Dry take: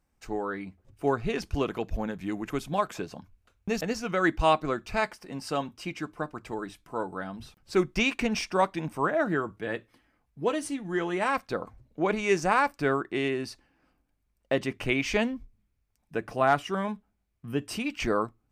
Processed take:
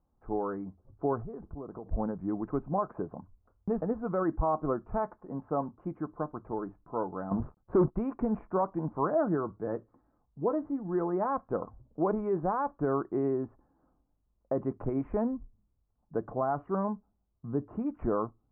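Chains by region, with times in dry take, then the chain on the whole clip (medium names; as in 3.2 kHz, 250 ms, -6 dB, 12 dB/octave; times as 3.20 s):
1.22–1.86 s: low-pass 1.3 kHz 6 dB/octave + compression 8:1, threshold -37 dBFS
7.31–7.95 s: waveshaping leveller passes 3 + gate with hold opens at -48 dBFS, closes at -54 dBFS
whole clip: peak limiter -18 dBFS; steep low-pass 1.2 kHz 36 dB/octave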